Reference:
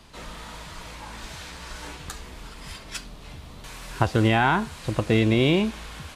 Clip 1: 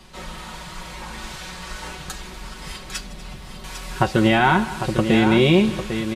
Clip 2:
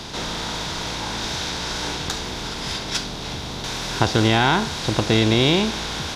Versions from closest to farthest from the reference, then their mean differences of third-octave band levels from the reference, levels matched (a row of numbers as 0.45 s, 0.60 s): 1, 2; 2.5 dB, 7.5 dB